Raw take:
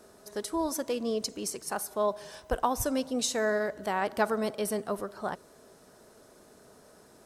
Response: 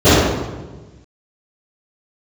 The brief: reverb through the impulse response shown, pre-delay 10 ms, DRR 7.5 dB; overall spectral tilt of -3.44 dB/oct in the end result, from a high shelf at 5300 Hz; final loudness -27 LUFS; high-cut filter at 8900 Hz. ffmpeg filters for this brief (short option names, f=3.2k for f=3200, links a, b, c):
-filter_complex "[0:a]lowpass=8.9k,highshelf=f=5.3k:g=6,asplit=2[a][b];[1:a]atrim=start_sample=2205,adelay=10[c];[b][c]afir=irnorm=-1:irlink=0,volume=-40dB[d];[a][d]amix=inputs=2:normalize=0,volume=2dB"